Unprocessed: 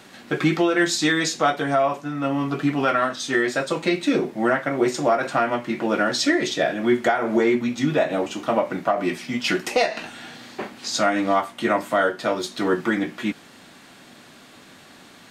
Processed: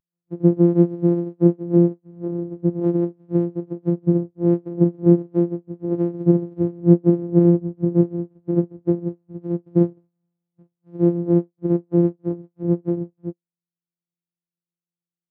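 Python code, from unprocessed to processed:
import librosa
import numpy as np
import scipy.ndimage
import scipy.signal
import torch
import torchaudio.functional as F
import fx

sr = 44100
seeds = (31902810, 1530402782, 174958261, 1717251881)

y = np.r_[np.sort(x[:len(x) // 256 * 256].reshape(-1, 256), axis=1).ravel(), x[len(x) // 256 * 256:]]
y = fx.dynamic_eq(y, sr, hz=370.0, q=0.99, threshold_db=-34.0, ratio=4.0, max_db=8)
y = fx.spectral_expand(y, sr, expansion=2.5)
y = y * 10.0 ** (1.5 / 20.0)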